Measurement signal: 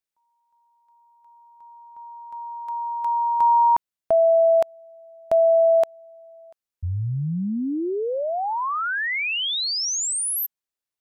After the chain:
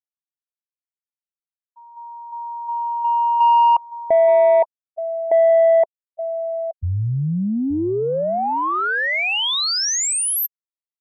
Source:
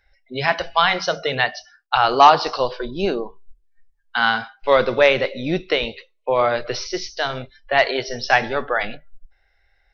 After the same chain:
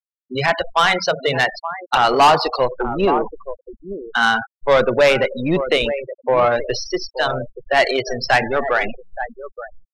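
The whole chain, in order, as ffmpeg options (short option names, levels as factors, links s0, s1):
-filter_complex "[0:a]asplit=2[s0][s1];[s1]adelay=874.6,volume=0.251,highshelf=f=4000:g=-19.7[s2];[s0][s2]amix=inputs=2:normalize=0,afftfilt=real='re*gte(hypot(re,im),0.0708)':imag='im*gte(hypot(re,im),0.0708)':win_size=1024:overlap=0.75,asoftclip=type=tanh:threshold=0.266,volume=1.68"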